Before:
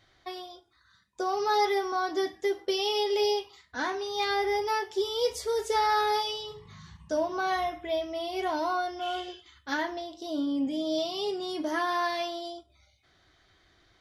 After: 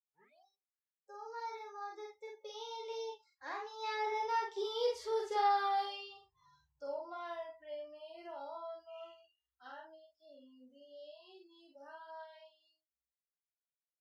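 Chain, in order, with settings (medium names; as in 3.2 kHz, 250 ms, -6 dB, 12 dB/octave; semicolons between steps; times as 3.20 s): tape start-up on the opening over 0.47 s; Doppler pass-by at 4.81 s, 31 m/s, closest 25 m; peaking EQ 2.5 kHz -9.5 dB 2.8 oct; doubling 47 ms -2 dB; spectral noise reduction 24 dB; three-band isolator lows -24 dB, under 510 Hz, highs -21 dB, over 4.7 kHz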